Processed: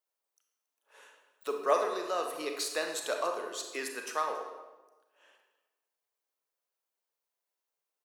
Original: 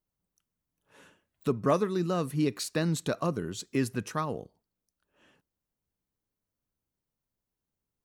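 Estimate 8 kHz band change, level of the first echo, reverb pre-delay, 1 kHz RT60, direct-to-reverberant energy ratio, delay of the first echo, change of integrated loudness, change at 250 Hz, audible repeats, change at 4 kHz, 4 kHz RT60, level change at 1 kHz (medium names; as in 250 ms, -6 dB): +1.0 dB, -21.5 dB, 30 ms, 1.1 s, 3.0 dB, 277 ms, -3.0 dB, -15.0 dB, 1, +1.5 dB, 0.85 s, +2.0 dB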